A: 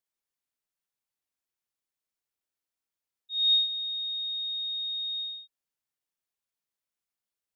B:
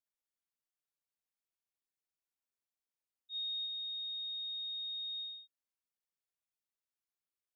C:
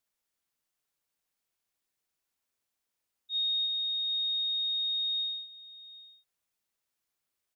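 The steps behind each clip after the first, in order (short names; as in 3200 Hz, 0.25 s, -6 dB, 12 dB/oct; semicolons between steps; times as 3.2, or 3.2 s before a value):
limiter -27.5 dBFS, peak gain reduction 10 dB; gain -8 dB
echo 0.768 s -17.5 dB; gain +9 dB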